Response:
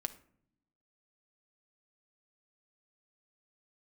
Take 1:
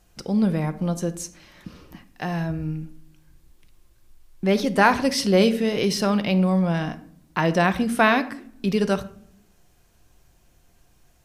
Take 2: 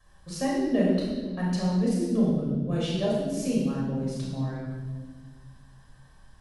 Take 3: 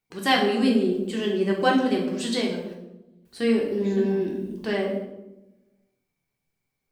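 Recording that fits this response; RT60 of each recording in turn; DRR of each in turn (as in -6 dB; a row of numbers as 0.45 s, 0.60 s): 1; no single decay rate, 1.5 s, 1.0 s; 9.5 dB, -6.5 dB, -2.0 dB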